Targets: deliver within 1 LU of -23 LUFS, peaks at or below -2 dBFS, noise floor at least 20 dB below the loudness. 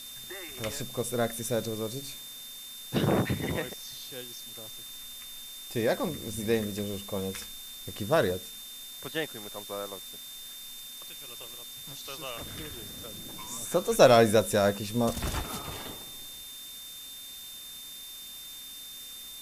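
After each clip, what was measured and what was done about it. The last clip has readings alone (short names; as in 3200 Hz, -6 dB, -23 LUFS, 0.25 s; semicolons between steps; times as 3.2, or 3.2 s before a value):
steady tone 3600 Hz; tone level -44 dBFS; noise floor -44 dBFS; noise floor target -52 dBFS; loudness -31.5 LUFS; peak -5.5 dBFS; loudness target -23.0 LUFS
-> notch 3600 Hz, Q 30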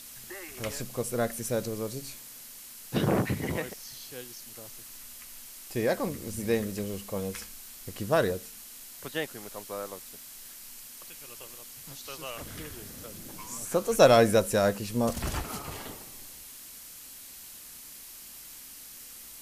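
steady tone none; noise floor -47 dBFS; noise floor target -50 dBFS
-> denoiser 6 dB, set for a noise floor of -47 dBFS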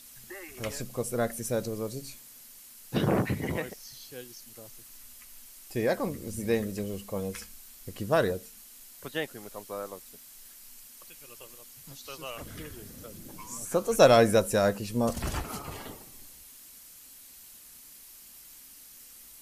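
noise floor -51 dBFS; loudness -29.5 LUFS; peak -5.5 dBFS; loudness target -23.0 LUFS
-> gain +6.5 dB; limiter -2 dBFS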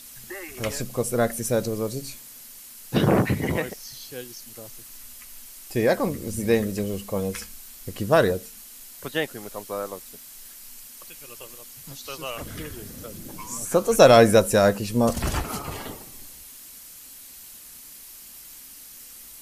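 loudness -23.0 LUFS; peak -2.0 dBFS; noise floor -44 dBFS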